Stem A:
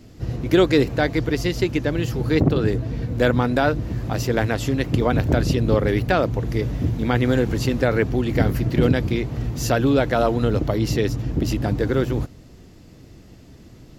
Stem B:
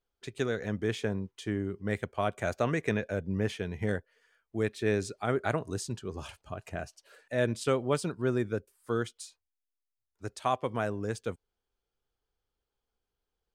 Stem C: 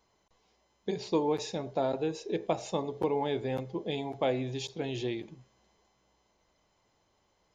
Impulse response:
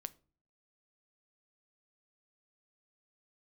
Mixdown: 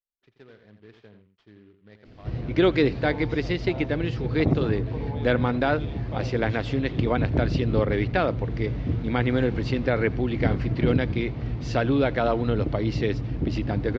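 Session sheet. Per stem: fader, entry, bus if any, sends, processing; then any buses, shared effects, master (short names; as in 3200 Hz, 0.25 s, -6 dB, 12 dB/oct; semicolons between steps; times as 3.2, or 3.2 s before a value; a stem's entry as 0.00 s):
-4.0 dB, 2.05 s, no send, echo send -24 dB, bell 2200 Hz +4 dB 0.24 oct
-19.5 dB, 0.00 s, no send, echo send -9 dB, noise-modulated delay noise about 1900 Hz, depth 0.05 ms
-9.0 dB, 1.90 s, no send, echo send -5 dB, dry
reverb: off
echo: echo 85 ms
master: LPF 4400 Hz 24 dB/oct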